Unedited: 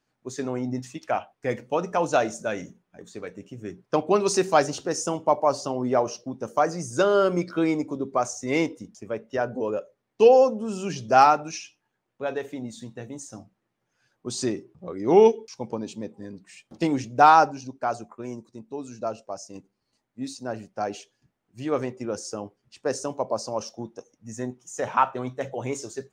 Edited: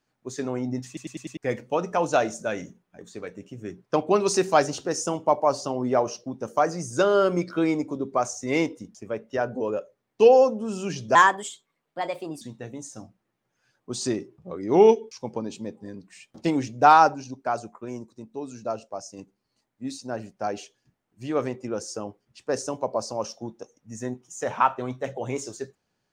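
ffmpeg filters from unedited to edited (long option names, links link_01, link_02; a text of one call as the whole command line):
ffmpeg -i in.wav -filter_complex "[0:a]asplit=8[link_01][link_02][link_03][link_04][link_05][link_06][link_07][link_08];[link_01]atrim=end=0.972[link_09];[link_02]atrim=start=0.868:end=0.972[link_10];[link_03]atrim=start=0.868:end=0.972[link_11];[link_04]atrim=start=0.868:end=0.972[link_12];[link_05]atrim=start=0.868:end=0.972[link_13];[link_06]atrim=start=1.368:end=11.154[link_14];[link_07]atrim=start=11.15:end=12.78,asetpts=PTS-STARTPTS,asetrate=56889,aresample=44100,atrim=end_sample=55723,asetpts=PTS-STARTPTS[link_15];[link_08]atrim=start=12.776[link_16];[link_09][link_10]acrossfade=duration=0.004:curve1=hsin:curve2=hsin[link_17];[link_17][link_11]acrossfade=duration=0.004:curve1=hsin:curve2=hsin[link_18];[link_18][link_12]acrossfade=duration=0.004:curve1=hsin:curve2=hsin[link_19];[link_19][link_13]acrossfade=duration=0.004:curve1=hsin:curve2=hsin[link_20];[link_20][link_14]acrossfade=duration=0.004:curve1=hsin:curve2=hsin[link_21];[link_21][link_15]acrossfade=duration=0.004:curve1=hsin:curve2=hsin[link_22];[link_22][link_16]acrossfade=duration=0.004:curve1=hsin:curve2=hsin" out.wav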